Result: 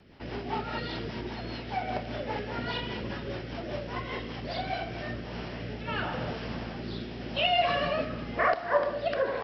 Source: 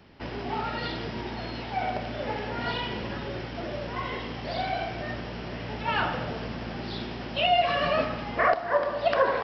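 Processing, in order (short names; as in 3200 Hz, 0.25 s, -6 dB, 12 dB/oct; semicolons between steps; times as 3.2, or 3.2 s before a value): rotary speaker horn 5 Hz, later 0.9 Hz, at 4.61; short-mantissa float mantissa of 8-bit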